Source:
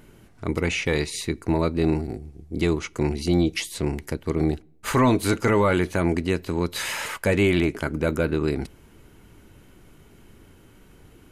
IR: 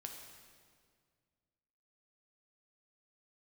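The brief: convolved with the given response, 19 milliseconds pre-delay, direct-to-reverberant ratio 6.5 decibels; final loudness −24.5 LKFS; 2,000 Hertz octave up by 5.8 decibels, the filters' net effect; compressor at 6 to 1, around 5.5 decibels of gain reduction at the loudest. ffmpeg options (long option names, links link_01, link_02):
-filter_complex "[0:a]equalizer=frequency=2000:width_type=o:gain=7,acompressor=threshold=-21dB:ratio=6,asplit=2[link_01][link_02];[1:a]atrim=start_sample=2205,adelay=19[link_03];[link_02][link_03]afir=irnorm=-1:irlink=0,volume=-3dB[link_04];[link_01][link_04]amix=inputs=2:normalize=0,volume=1.5dB"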